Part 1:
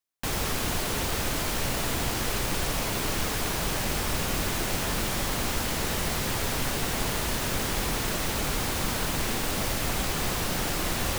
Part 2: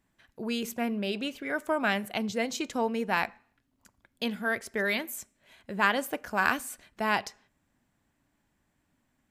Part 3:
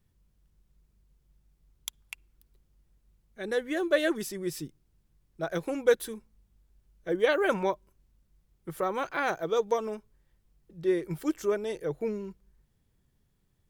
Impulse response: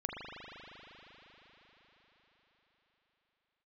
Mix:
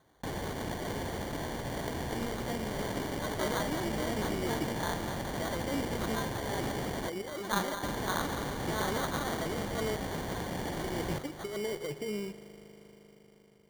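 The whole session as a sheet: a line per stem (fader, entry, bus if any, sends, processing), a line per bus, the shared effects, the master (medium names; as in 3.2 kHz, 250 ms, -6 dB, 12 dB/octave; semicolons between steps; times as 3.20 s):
-7.5 dB, 0.00 s, muted 7.08–7.83 s, send -14.5 dB, no echo send, steep low-pass 1.1 kHz 48 dB/octave; level flattener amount 70%
-12.0 dB, 1.70 s, send -5.5 dB, echo send -8 dB, none
-5.0 dB, 0.00 s, send -12.5 dB, no echo send, compressor with a negative ratio -33 dBFS, ratio -1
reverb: on, RT60 5.1 s, pre-delay 39 ms
echo: delay 207 ms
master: high-pass 100 Hz 6 dB/octave; sample-and-hold 17×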